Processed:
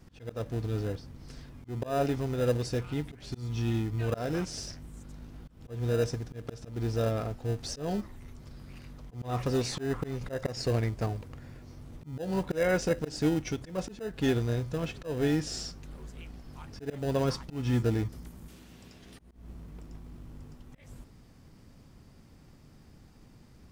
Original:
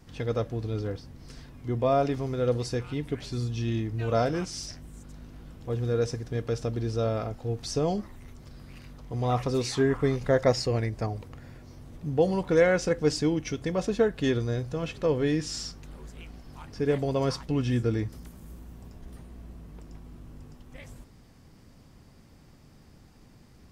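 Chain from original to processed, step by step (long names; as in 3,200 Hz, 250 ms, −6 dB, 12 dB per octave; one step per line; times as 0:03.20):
0:18.48–0:19.18: meter weighting curve D
volume swells 191 ms
in parallel at −10.5 dB: decimation without filtering 40×
on the sum: level −2.5 dB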